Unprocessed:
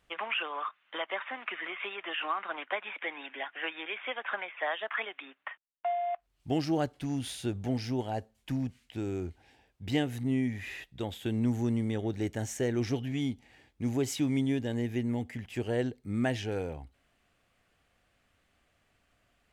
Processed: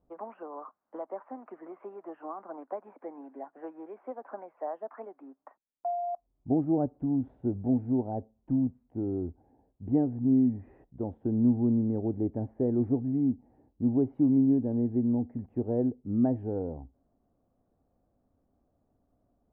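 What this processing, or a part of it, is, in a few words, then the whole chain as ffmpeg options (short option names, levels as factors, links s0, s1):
under water: -af "lowpass=f=830:w=0.5412,lowpass=f=830:w=1.3066,equalizer=f=260:t=o:w=0.6:g=7"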